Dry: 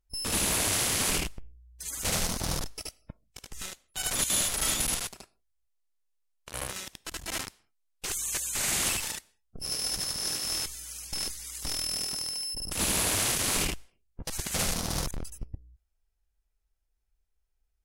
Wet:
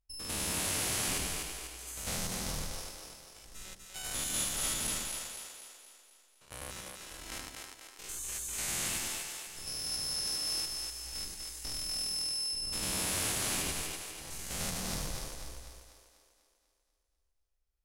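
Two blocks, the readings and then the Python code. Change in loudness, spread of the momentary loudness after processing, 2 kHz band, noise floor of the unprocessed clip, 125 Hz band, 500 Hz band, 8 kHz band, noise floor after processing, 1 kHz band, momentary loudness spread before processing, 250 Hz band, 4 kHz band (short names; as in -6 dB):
-5.5 dB, 16 LU, -5.5 dB, -76 dBFS, -6.0 dB, -6.0 dB, -5.5 dB, -77 dBFS, -6.0 dB, 16 LU, -5.5 dB, -4.0 dB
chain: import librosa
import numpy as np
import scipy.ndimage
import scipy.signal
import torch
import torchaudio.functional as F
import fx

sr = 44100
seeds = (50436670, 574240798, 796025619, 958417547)

y = fx.spec_steps(x, sr, hold_ms=100)
y = fx.echo_split(y, sr, split_hz=330.0, low_ms=101, high_ms=246, feedback_pct=52, wet_db=-3.5)
y = y * 10.0 ** (-6.0 / 20.0)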